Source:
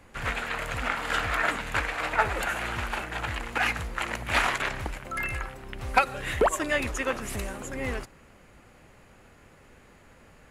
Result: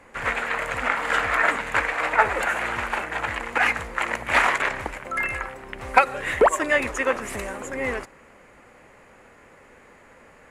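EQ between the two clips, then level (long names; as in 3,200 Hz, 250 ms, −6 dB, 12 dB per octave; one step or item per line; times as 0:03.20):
graphic EQ with 10 bands 250 Hz +5 dB, 500 Hz +9 dB, 1,000 Hz +8 dB, 2,000 Hz +10 dB, 8,000 Hz +7 dB
−5.0 dB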